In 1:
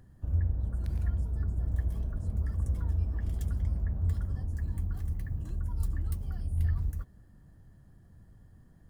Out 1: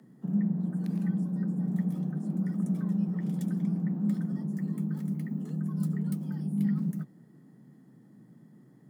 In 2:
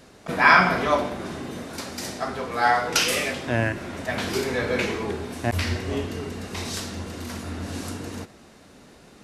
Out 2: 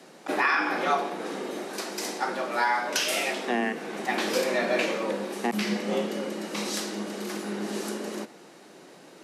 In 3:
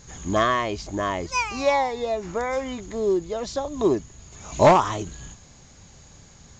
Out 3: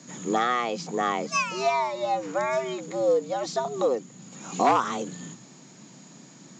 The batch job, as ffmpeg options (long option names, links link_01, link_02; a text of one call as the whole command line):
ffmpeg -i in.wav -af "alimiter=limit=-13.5dB:level=0:latency=1:release=444,afreqshift=120" out.wav